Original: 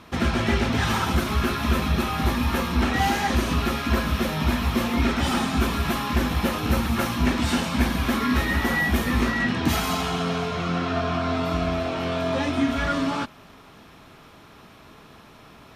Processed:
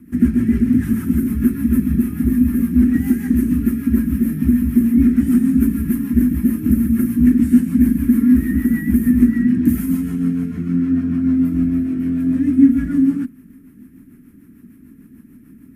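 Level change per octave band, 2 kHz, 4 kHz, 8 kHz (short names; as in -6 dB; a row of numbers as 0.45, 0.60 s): -10.5 dB, under -20 dB, n/a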